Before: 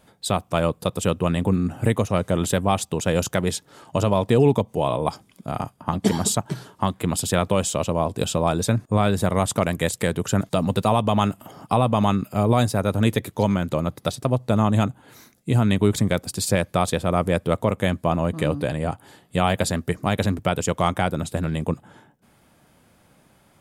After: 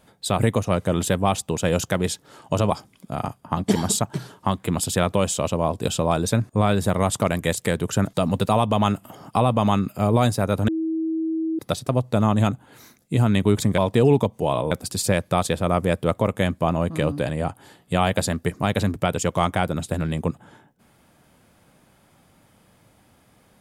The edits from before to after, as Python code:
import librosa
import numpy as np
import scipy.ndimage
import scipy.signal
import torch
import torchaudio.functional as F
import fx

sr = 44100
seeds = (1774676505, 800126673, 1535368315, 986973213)

y = fx.edit(x, sr, fx.cut(start_s=0.39, length_s=1.43),
    fx.move(start_s=4.13, length_s=0.93, to_s=16.14),
    fx.bleep(start_s=13.04, length_s=0.91, hz=322.0, db=-21.5), tone=tone)